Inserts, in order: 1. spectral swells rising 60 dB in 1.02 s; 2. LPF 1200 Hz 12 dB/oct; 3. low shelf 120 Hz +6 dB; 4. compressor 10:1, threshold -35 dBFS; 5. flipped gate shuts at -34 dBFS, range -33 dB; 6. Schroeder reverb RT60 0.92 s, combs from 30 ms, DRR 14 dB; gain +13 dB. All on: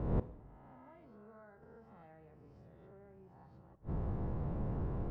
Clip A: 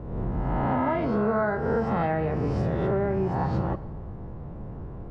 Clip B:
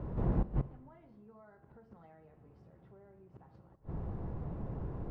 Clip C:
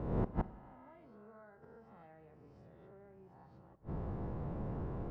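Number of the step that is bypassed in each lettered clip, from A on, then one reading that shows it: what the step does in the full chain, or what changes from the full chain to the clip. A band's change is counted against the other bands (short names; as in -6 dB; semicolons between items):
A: 5, momentary loudness spread change -6 LU; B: 1, momentary loudness spread change +4 LU; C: 3, 125 Hz band -3.5 dB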